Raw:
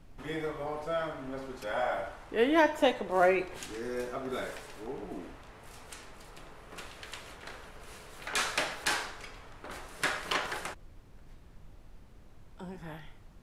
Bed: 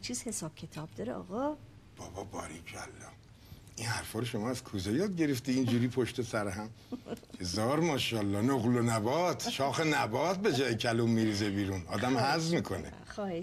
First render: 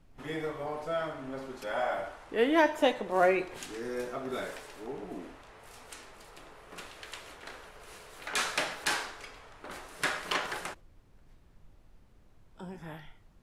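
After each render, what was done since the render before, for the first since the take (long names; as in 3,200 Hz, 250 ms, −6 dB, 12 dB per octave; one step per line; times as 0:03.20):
noise reduction from a noise print 6 dB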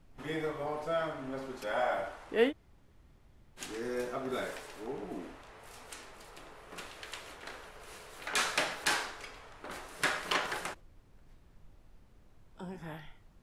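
0:02.50–0:03.59: fill with room tone, crossfade 0.06 s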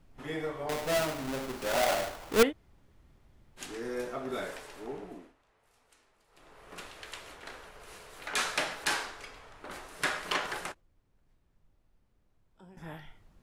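0:00.69–0:02.43: each half-wave held at its own peak
0:04.93–0:06.69: duck −17.5 dB, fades 0.41 s
0:10.72–0:12.77: clip gain −11 dB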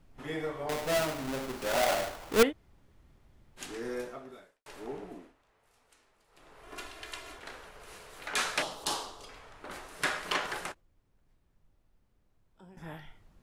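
0:03.93–0:04.66: fade out quadratic
0:06.63–0:07.39: comb filter 2.9 ms
0:08.62–0:09.29: flat-topped bell 1,900 Hz −14.5 dB 1 octave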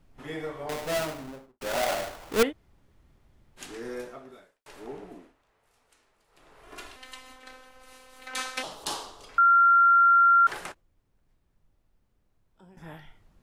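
0:01.01–0:01.61: fade out and dull
0:06.96–0:08.64: phases set to zero 258 Hz
0:09.38–0:10.47: beep over 1,380 Hz −15 dBFS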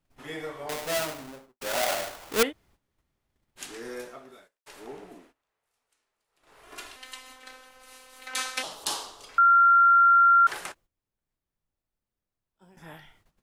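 noise gate −56 dBFS, range −13 dB
spectral tilt +1.5 dB per octave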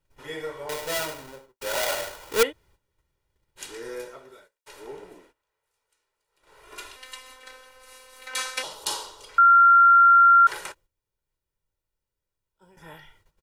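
comb filter 2.1 ms, depth 56%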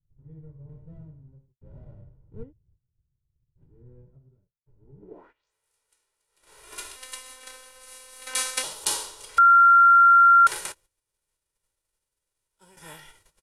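spectral envelope flattened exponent 0.6
low-pass filter sweep 130 Hz → 10,000 Hz, 0:04.95–0:05.54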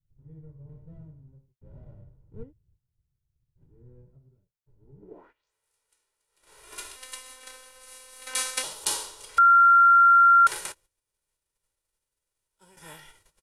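level −1.5 dB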